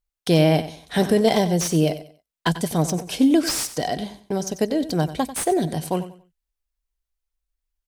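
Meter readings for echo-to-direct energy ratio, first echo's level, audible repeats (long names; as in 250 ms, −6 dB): −13.0 dB, −13.5 dB, 2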